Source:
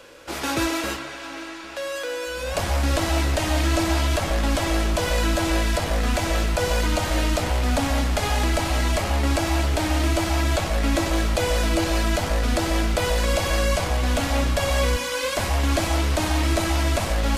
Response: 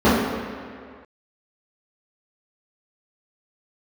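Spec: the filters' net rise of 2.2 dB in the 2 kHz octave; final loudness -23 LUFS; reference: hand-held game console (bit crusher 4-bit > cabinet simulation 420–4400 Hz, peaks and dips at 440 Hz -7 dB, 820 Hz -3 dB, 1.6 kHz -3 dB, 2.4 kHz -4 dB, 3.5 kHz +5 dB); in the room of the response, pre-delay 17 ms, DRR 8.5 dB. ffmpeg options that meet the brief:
-filter_complex "[0:a]equalizer=f=2000:t=o:g=6,asplit=2[s0][s1];[1:a]atrim=start_sample=2205,adelay=17[s2];[s1][s2]afir=irnorm=-1:irlink=0,volume=0.0188[s3];[s0][s3]amix=inputs=2:normalize=0,acrusher=bits=3:mix=0:aa=0.000001,highpass=420,equalizer=f=440:t=q:w=4:g=-7,equalizer=f=820:t=q:w=4:g=-3,equalizer=f=1600:t=q:w=4:g=-3,equalizer=f=2400:t=q:w=4:g=-4,equalizer=f=3500:t=q:w=4:g=5,lowpass=f=4400:w=0.5412,lowpass=f=4400:w=1.3066,volume=1.12"

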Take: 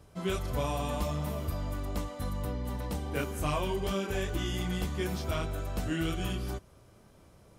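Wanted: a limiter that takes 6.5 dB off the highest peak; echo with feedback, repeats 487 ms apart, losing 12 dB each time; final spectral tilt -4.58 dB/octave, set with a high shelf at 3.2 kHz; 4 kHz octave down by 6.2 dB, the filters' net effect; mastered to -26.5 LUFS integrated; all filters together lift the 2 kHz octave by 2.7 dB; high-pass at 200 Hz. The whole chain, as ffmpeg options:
-af "highpass=200,equalizer=f=2000:t=o:g=8,highshelf=f=3200:g=-7,equalizer=f=4000:t=o:g=-8,alimiter=level_in=1.33:limit=0.0631:level=0:latency=1,volume=0.75,aecho=1:1:487|974|1461:0.251|0.0628|0.0157,volume=3.55"

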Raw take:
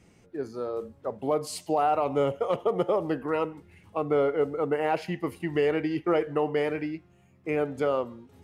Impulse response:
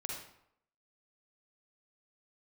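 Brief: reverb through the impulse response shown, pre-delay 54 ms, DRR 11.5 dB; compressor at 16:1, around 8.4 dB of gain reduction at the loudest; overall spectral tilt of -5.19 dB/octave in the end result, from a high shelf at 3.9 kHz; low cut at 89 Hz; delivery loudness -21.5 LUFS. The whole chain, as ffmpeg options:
-filter_complex "[0:a]highpass=89,highshelf=f=3900:g=4,acompressor=threshold=0.0398:ratio=16,asplit=2[s0][s1];[1:a]atrim=start_sample=2205,adelay=54[s2];[s1][s2]afir=irnorm=-1:irlink=0,volume=0.266[s3];[s0][s3]amix=inputs=2:normalize=0,volume=4.22"

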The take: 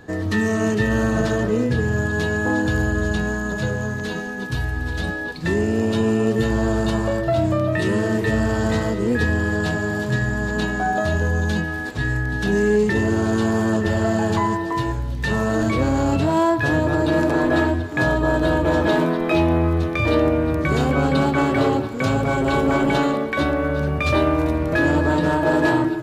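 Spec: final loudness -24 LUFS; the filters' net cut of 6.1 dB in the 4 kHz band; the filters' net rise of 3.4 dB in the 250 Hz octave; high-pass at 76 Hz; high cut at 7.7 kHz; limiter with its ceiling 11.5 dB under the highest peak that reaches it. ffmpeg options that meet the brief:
-af "highpass=76,lowpass=7700,equalizer=f=250:t=o:g=4.5,equalizer=f=4000:t=o:g=-7.5,alimiter=limit=0.158:level=0:latency=1"

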